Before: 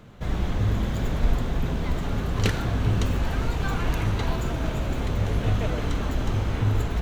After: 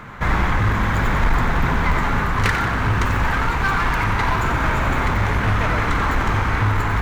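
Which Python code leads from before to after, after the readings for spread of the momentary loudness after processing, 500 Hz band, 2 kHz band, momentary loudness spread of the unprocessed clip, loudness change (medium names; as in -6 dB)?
1 LU, +4.5 dB, +15.5 dB, 3 LU, +7.0 dB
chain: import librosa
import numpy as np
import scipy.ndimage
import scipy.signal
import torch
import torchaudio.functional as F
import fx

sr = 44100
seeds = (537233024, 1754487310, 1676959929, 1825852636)

p1 = fx.band_shelf(x, sr, hz=1400.0, db=12.5, octaves=1.7)
p2 = 10.0 ** (-19.0 / 20.0) * (np.abs((p1 / 10.0 ** (-19.0 / 20.0) + 3.0) % 4.0 - 2.0) - 1.0)
p3 = p1 + (p2 * librosa.db_to_amplitude(-4.0))
p4 = fx.echo_split(p3, sr, split_hz=450.0, low_ms=256, high_ms=91, feedback_pct=52, wet_db=-9.5)
y = fx.rider(p4, sr, range_db=4, speed_s=0.5)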